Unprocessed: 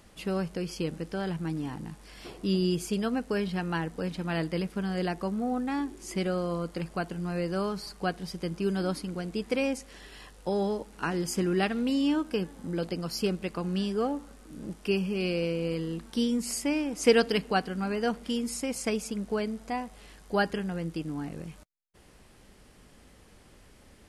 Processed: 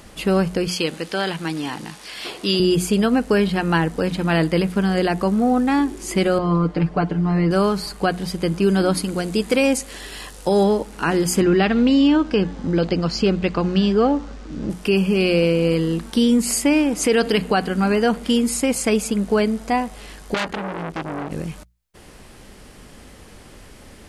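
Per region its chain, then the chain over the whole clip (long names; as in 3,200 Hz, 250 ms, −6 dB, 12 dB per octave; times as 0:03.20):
0:00.68–0:02.60: high-pass filter 460 Hz 6 dB per octave + parametric band 4,000 Hz +7 dB 2.1 octaves + notch filter 7,500 Hz, Q 29
0:06.38–0:07.51: head-to-tape spacing loss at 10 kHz 26 dB + comb filter 6.7 ms, depth 85%
0:08.97–0:10.64: bass and treble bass −1 dB, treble +6 dB + hard clipping −19 dBFS
0:11.41–0:14.70: low-pass filter 6,200 Hz 24 dB per octave + parametric band 69 Hz +7.5 dB 1.2 octaves
0:20.34–0:21.31: high-shelf EQ 7,400 Hz −9 dB + saturating transformer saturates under 3,700 Hz
whole clip: mains-hum notches 60/120/180 Hz; dynamic equaliser 5,500 Hz, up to −7 dB, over −59 dBFS, Q 4.9; boost into a limiter +20 dB; level −7.5 dB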